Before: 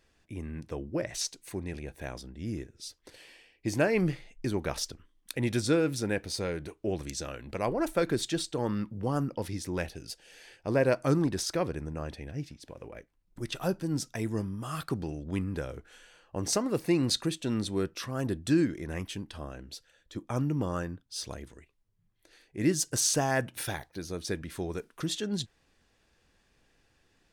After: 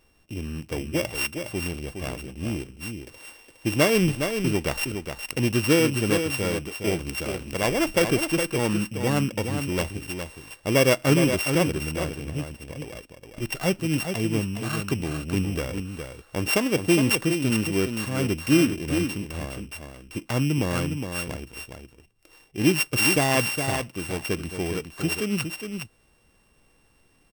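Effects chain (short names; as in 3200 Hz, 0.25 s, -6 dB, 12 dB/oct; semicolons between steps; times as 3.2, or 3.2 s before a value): sample sorter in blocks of 16 samples; echo 0.413 s -7 dB; gain +6 dB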